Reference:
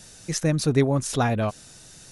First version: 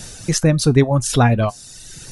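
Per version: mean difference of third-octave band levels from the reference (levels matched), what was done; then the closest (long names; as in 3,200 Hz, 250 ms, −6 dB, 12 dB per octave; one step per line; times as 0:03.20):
3.5 dB: reverb reduction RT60 0.86 s
low-shelf EQ 130 Hz +7 dB
in parallel at +2.5 dB: downward compressor, threshold −31 dBFS, peak gain reduction 16.5 dB
on the sum: tuned comb filter 120 Hz, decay 0.17 s, harmonics all, mix 40%
level +7 dB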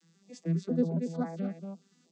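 12.5 dB: vocoder with an arpeggio as carrier minor triad, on E3, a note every 137 ms
Butterworth high-pass 160 Hz 96 dB per octave
on a send: single-tap delay 233 ms −7 dB
on the sum: notch on a step sequencer 4.4 Hz 630–2,800 Hz
level −7.5 dB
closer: first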